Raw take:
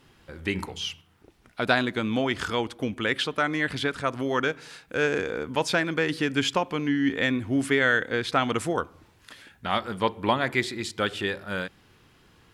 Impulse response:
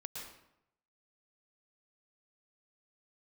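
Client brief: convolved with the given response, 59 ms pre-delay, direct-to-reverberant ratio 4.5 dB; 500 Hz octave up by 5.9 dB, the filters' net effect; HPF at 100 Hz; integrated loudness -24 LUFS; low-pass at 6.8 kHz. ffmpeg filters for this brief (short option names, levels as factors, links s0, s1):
-filter_complex "[0:a]highpass=100,lowpass=6800,equalizer=f=500:t=o:g=7,asplit=2[s0][s1];[1:a]atrim=start_sample=2205,adelay=59[s2];[s1][s2]afir=irnorm=-1:irlink=0,volume=0.75[s3];[s0][s3]amix=inputs=2:normalize=0,volume=0.891"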